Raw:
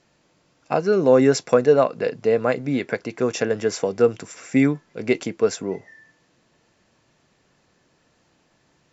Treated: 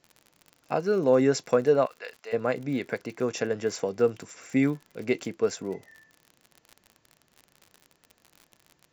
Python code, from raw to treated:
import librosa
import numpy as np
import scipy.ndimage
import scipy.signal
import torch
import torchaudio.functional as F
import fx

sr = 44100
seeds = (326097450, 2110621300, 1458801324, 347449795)

y = fx.highpass(x, sr, hz=1100.0, slope=12, at=(1.85, 2.32), fade=0.02)
y = fx.dmg_crackle(y, sr, seeds[0], per_s=56.0, level_db=-31.0)
y = F.gain(torch.from_numpy(y), -6.0).numpy()